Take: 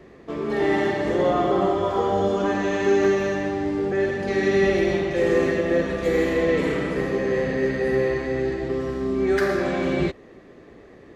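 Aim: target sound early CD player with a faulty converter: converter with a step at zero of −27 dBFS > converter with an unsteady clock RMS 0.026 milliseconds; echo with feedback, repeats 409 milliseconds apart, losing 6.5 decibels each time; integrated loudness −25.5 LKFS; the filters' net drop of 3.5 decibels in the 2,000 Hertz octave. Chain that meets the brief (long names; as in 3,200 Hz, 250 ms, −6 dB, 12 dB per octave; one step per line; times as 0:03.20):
parametric band 2,000 Hz −4 dB
repeating echo 409 ms, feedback 47%, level −6.5 dB
converter with a step at zero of −27 dBFS
converter with an unsteady clock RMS 0.026 ms
level −5.5 dB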